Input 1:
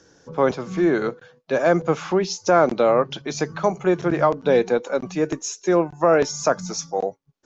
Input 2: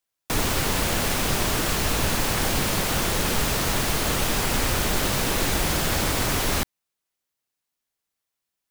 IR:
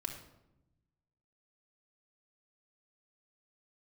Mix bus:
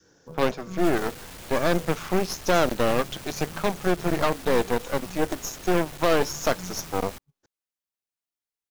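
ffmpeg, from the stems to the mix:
-filter_complex "[0:a]adynamicequalizer=threshold=0.0447:dfrequency=640:dqfactor=1.1:tfrequency=640:tqfactor=1.1:attack=5:release=100:ratio=0.375:range=2:mode=cutabove:tftype=bell,volume=0.562[s0];[1:a]asoftclip=type=tanh:threshold=0.0335,adelay=550,volume=0.299[s1];[s0][s1]amix=inputs=2:normalize=0,aeval=exprs='0.316*(cos(1*acos(clip(val(0)/0.316,-1,1)))-cos(1*PI/2))+0.0562*(cos(8*acos(clip(val(0)/0.316,-1,1)))-cos(8*PI/2))':c=same,acrusher=bits=6:mode=log:mix=0:aa=0.000001"

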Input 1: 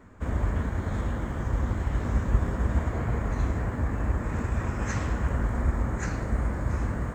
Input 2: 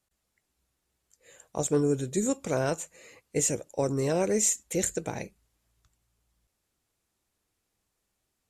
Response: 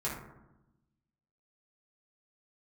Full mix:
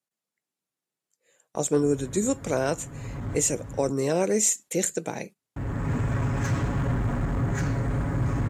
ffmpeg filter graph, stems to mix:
-filter_complex "[0:a]aecho=1:1:7.2:0.97,asoftclip=type=hard:threshold=0.0531,equalizer=f=140:t=o:w=2.3:g=7,adelay=1550,volume=0.891,asplit=3[s0][s1][s2];[s0]atrim=end=3.91,asetpts=PTS-STARTPTS,afade=t=out:st=3.906:d=0.004:c=hsin[s3];[s1]atrim=start=3.91:end=5.56,asetpts=PTS-STARTPTS,volume=0[s4];[s2]atrim=start=5.56,asetpts=PTS-STARTPTS,afade=t=in:d=0.004:c=hsin[s5];[s3][s4][s5]concat=n=3:v=0:a=1[s6];[1:a]highpass=f=140:w=0.5412,highpass=f=140:w=1.3066,volume=1.33,asplit=2[s7][s8];[s8]apad=whole_len=383921[s9];[s6][s9]sidechaincompress=threshold=0.0126:ratio=5:attack=11:release=707[s10];[s10][s7]amix=inputs=2:normalize=0,agate=range=0.251:threshold=0.00708:ratio=16:detection=peak"

